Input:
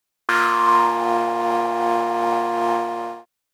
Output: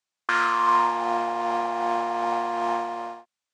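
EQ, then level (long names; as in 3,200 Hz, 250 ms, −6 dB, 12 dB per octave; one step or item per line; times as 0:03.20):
loudspeaker in its box 110–8,100 Hz, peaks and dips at 150 Hz −7 dB, 300 Hz −7 dB, 450 Hz −6 dB
−4.0 dB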